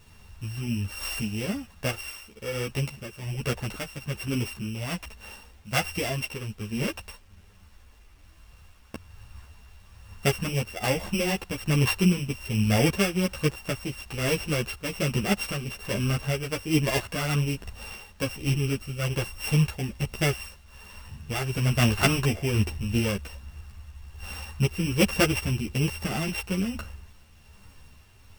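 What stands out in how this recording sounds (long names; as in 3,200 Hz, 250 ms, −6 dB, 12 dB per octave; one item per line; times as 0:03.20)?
a buzz of ramps at a fixed pitch in blocks of 16 samples
tremolo triangle 1.2 Hz, depth 55%
a quantiser's noise floor 10 bits, dither none
a shimmering, thickened sound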